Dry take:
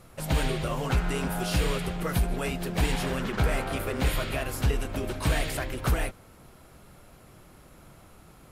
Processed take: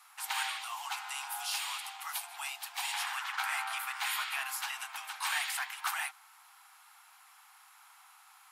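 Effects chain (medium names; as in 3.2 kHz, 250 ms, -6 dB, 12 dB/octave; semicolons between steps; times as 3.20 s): steep high-pass 780 Hz 96 dB/octave; 0.58–2.94 s: dynamic bell 1.6 kHz, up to -8 dB, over -50 dBFS, Q 1.3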